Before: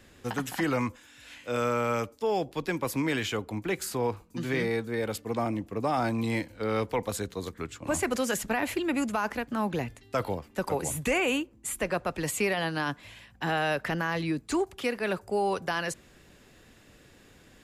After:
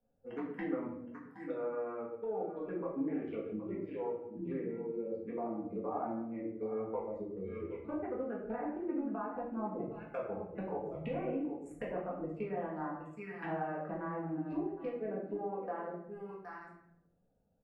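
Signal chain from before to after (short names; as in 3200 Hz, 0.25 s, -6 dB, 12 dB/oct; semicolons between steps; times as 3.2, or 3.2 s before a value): Wiener smoothing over 41 samples; spectral noise reduction 16 dB; echo 0.768 s -16 dB; treble ducked by the level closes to 1300 Hz, closed at -29.5 dBFS; envelope phaser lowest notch 330 Hz, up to 4800 Hz, full sweep at -28.5 dBFS; three-band isolator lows -15 dB, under 190 Hz, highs -16 dB, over 2200 Hz; compressor 5:1, threshold -43 dBFS, peak gain reduction 16 dB; shoebox room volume 190 m³, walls mixed, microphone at 1.8 m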